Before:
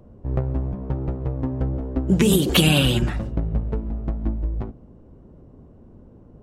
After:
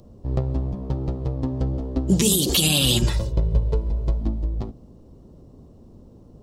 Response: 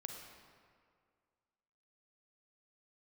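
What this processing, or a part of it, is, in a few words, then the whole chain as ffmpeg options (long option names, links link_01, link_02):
over-bright horn tweeter: -filter_complex "[0:a]bandreject=frequency=1500:width=10,asettb=1/sr,asplit=3[link_01][link_02][link_03];[link_01]atrim=end=3.044[link_04];[link_02]atrim=start=3.04:end=4.21,asetpts=PTS-STARTPTS,afade=type=in:duration=0.004:curve=qsin,afade=type=out:start_time=1.166:duration=0.004:curve=qsin,aecho=1:1:2:0.77,atrim=end_sample=51597[link_05];[link_03]atrim=start=4.206[link_06];[link_04][link_05]acrossfade=duration=0.004:curve1=hsin:curve2=qsin[link_07];[link_07][link_06]acrossfade=duration=0.004:curve1=qsin:curve2=hsin,highshelf=frequency=3100:width_type=q:width=1.5:gain=11.5,alimiter=limit=-8dB:level=0:latency=1:release=101"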